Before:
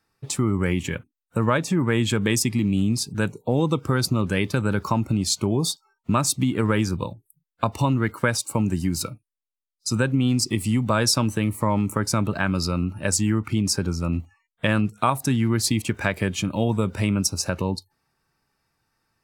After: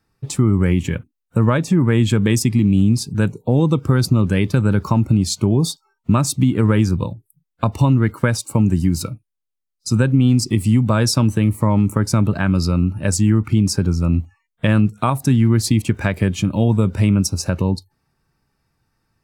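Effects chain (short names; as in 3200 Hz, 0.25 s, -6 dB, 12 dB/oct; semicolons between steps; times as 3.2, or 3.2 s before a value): low shelf 310 Hz +10 dB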